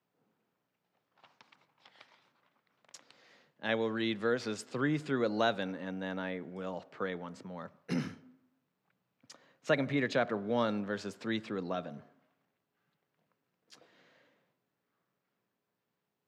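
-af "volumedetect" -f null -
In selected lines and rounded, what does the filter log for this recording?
mean_volume: -38.0 dB
max_volume: -13.6 dB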